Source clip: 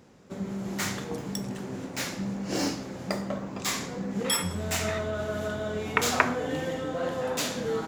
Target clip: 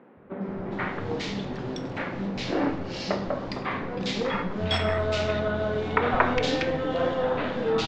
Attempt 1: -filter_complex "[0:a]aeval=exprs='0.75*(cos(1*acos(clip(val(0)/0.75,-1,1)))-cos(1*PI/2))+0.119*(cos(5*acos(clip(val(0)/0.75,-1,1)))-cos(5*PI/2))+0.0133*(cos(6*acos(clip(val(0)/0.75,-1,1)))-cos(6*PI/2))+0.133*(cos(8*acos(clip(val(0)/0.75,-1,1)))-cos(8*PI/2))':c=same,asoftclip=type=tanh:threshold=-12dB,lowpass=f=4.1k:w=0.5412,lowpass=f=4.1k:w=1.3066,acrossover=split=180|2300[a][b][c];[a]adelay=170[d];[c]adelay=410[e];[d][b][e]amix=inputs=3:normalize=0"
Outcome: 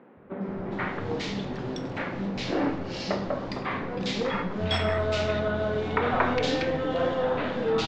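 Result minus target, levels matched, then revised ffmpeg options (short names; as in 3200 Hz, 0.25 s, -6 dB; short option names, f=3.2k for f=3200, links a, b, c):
soft clip: distortion +12 dB
-filter_complex "[0:a]aeval=exprs='0.75*(cos(1*acos(clip(val(0)/0.75,-1,1)))-cos(1*PI/2))+0.119*(cos(5*acos(clip(val(0)/0.75,-1,1)))-cos(5*PI/2))+0.0133*(cos(6*acos(clip(val(0)/0.75,-1,1)))-cos(6*PI/2))+0.133*(cos(8*acos(clip(val(0)/0.75,-1,1)))-cos(8*PI/2))':c=same,asoftclip=type=tanh:threshold=-2.5dB,lowpass=f=4.1k:w=0.5412,lowpass=f=4.1k:w=1.3066,acrossover=split=180|2300[a][b][c];[a]adelay=170[d];[c]adelay=410[e];[d][b][e]amix=inputs=3:normalize=0"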